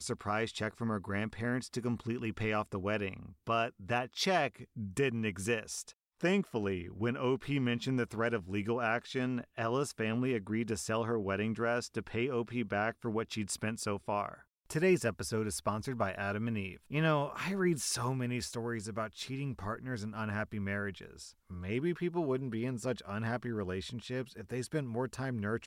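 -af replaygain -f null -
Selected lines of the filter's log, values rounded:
track_gain = +15.5 dB
track_peak = 0.093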